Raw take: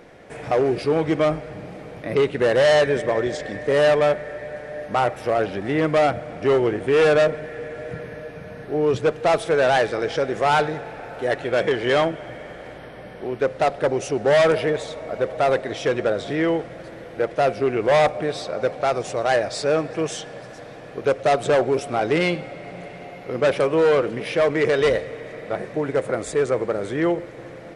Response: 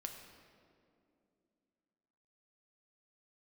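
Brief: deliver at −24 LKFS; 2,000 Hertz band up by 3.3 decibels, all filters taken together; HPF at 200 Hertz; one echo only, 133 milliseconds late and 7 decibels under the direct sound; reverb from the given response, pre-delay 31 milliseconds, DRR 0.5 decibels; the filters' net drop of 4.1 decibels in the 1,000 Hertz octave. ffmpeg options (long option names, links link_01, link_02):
-filter_complex "[0:a]highpass=200,equalizer=frequency=1000:width_type=o:gain=-8,equalizer=frequency=2000:width_type=o:gain=6.5,aecho=1:1:133:0.447,asplit=2[link_01][link_02];[1:a]atrim=start_sample=2205,adelay=31[link_03];[link_02][link_03]afir=irnorm=-1:irlink=0,volume=2dB[link_04];[link_01][link_04]amix=inputs=2:normalize=0,volume=-5dB"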